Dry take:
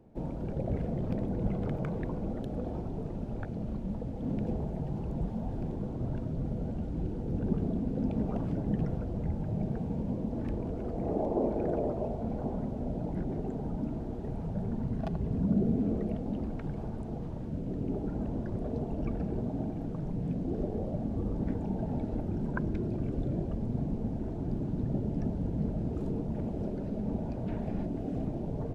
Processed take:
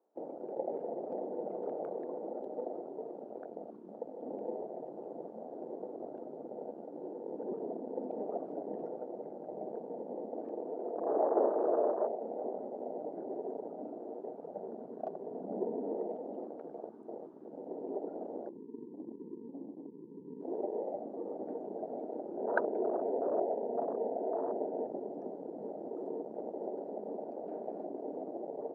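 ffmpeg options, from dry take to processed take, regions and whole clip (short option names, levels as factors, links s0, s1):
-filter_complex "[0:a]asettb=1/sr,asplit=3[s0][s1][s2];[s0]atrim=end=18.494[s3];[s1]atrim=start=18.49:end=20.41,asetpts=PTS-STARTPTS,afade=t=in:d=0.004:c=qsin,afade=t=out:st=1.916:d=0.004:c=qsin,asuperpass=centerf=190:order=20:qfactor=0.78,lowshelf=f=170:g=4.5[s4];[s2]atrim=start=20.406[s5];[s3][s4]acrossfade=d=0.004:c1=hsin:c2=qsin[s6];[s6][s5]acrossfade=d=0.004:c1=qsin:c2=hsin,asettb=1/sr,asplit=3[s7][s8][s9];[s7]atrim=end=22.374[s10];[s8]atrim=start=22.37:end=24.87,asetpts=PTS-STARTPTS,afade=t=in:d=0.004:c=qsin,afade=t=out:st=2.496:d=0.004:c=qsin,acontrast=45,asuperstop=centerf=1100:order=20:qfactor=4.1,highpass=160,equalizer=f=180:t=q:w=4:g=-6,equalizer=f=320:t=q:w=4:g=-6,equalizer=f=450:t=q:w=4:g=4,equalizer=f=680:t=q:w=4:g=6,equalizer=f=1200:t=q:w=4:g=-5,lowpass=f=2100:w=0.5412,lowpass=f=2100:w=1.3066[s11];[s9]atrim=start=24.866[s12];[s10][s11]acrossfade=d=0.004:c1=hsin:c2=qsin[s13];[s13][s12]acrossfade=d=0.004:c1=qsin:c2=hsin,afwtdn=0.02,highpass=f=390:w=0.5412,highpass=f=390:w=1.3066,highshelf=f=1700:t=q:w=1.5:g=-9.5,volume=1.41"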